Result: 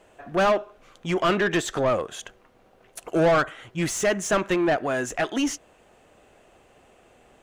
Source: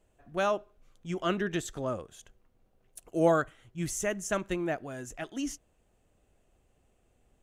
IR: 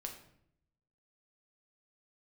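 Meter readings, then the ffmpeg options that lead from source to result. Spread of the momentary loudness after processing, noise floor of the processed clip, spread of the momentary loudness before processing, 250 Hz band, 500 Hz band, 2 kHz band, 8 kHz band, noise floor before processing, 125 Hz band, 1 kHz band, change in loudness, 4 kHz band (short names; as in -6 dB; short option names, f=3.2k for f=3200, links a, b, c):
10 LU, -58 dBFS, 13 LU, +7.0 dB, +8.0 dB, +10.0 dB, +7.0 dB, -70 dBFS, +6.0 dB, +8.5 dB, +8.0 dB, +10.5 dB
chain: -filter_complex "[0:a]asplit=2[a][b];[b]acompressor=threshold=-37dB:ratio=6,volume=-2dB[c];[a][c]amix=inputs=2:normalize=0,asplit=2[d][e];[e]highpass=f=720:p=1,volume=23dB,asoftclip=type=tanh:threshold=-12dB[f];[d][f]amix=inputs=2:normalize=0,lowpass=f=2.3k:p=1,volume=-6dB"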